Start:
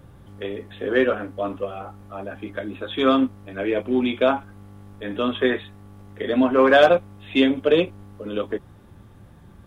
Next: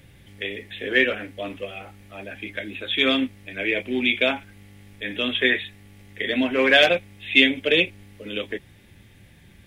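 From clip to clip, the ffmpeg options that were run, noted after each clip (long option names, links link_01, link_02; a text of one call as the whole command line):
ffmpeg -i in.wav -af "highshelf=frequency=1600:width_type=q:width=3:gain=9.5,volume=-4dB" out.wav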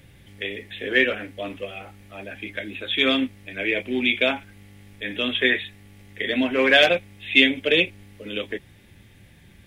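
ffmpeg -i in.wav -af anull out.wav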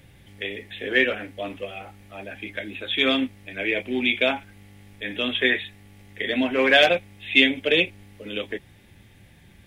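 ffmpeg -i in.wav -af "equalizer=frequency=790:width=2.8:gain=3.5,volume=-1dB" out.wav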